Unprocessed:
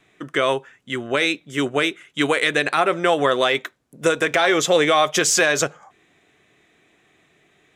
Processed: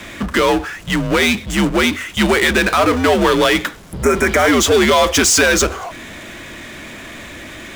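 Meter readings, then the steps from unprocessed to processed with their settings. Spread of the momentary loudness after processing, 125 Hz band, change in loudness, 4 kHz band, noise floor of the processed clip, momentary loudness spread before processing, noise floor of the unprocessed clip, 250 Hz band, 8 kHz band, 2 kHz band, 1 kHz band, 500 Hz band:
20 LU, +9.5 dB, +5.5 dB, +5.0 dB, -34 dBFS, 9 LU, -61 dBFS, +9.0 dB, +6.5 dB, +5.0 dB, +4.0 dB, +4.5 dB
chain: power-law curve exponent 0.5; spectral repair 3.92–4.5, 2600–5300 Hz both; frequency shift -85 Hz

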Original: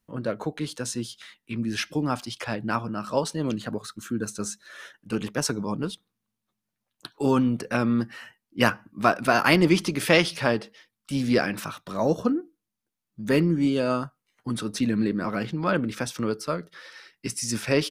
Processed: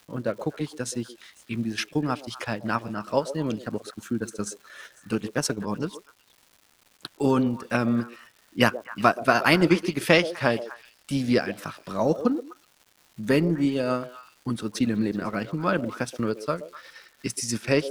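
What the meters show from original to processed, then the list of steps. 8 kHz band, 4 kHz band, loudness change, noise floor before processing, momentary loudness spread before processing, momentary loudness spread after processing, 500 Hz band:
-1.5 dB, -1.0 dB, 0.0 dB, -84 dBFS, 16 LU, 16 LU, +0.5 dB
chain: transient shaper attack +3 dB, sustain -9 dB; delay with a stepping band-pass 0.125 s, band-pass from 480 Hz, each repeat 1.4 oct, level -10 dB; crackle 400/s -43 dBFS; gain -1 dB

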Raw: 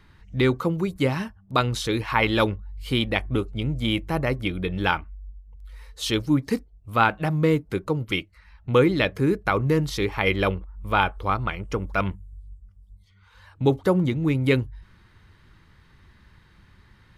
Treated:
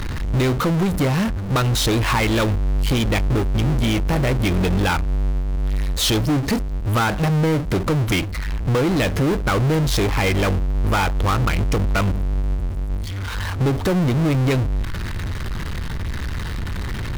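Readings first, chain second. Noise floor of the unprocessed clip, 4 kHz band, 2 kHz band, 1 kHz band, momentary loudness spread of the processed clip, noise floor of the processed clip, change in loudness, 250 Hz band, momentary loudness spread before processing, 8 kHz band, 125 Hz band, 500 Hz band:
-56 dBFS, +4.5 dB, +2.0 dB, +1.5 dB, 10 LU, -26 dBFS, +3.5 dB, +4.0 dB, 8 LU, +12.0 dB, +7.5 dB, +1.5 dB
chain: low shelf 120 Hz +9.5 dB; compressor, threshold -24 dBFS, peak gain reduction 12.5 dB; power-law curve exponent 0.35

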